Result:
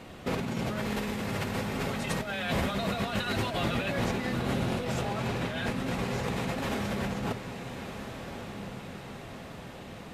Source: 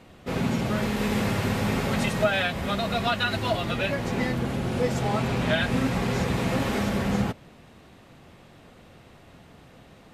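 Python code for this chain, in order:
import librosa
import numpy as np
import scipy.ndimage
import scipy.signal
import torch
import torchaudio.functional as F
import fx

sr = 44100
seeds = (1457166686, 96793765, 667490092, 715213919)

y = fx.low_shelf(x, sr, hz=160.0, db=-3.0)
y = fx.over_compress(y, sr, threshold_db=-32.0, ratio=-1.0)
y = fx.echo_diffused(y, sr, ms=1281, feedback_pct=52, wet_db=-9)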